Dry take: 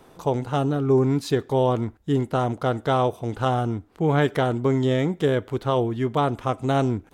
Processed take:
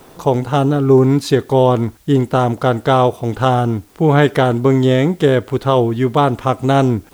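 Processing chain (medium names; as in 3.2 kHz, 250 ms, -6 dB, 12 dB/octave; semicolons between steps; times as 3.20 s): added noise white -62 dBFS; trim +8.5 dB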